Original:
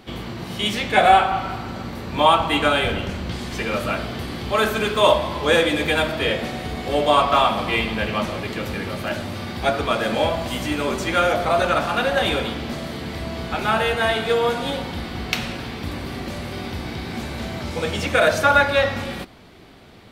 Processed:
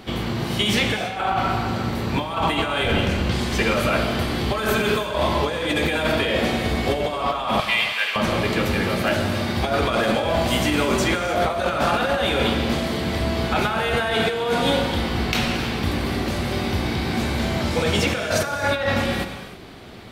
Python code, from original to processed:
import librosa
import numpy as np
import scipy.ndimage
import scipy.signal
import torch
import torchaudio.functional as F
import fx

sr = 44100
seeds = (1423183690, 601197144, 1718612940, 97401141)

y = fx.highpass(x, sr, hz=1400.0, slope=12, at=(7.6, 8.16))
y = fx.over_compress(y, sr, threshold_db=-24.0, ratio=-1.0)
y = fx.rev_gated(y, sr, seeds[0], gate_ms=350, shape='flat', drr_db=7.5)
y = F.gain(torch.from_numpy(y), 2.0).numpy()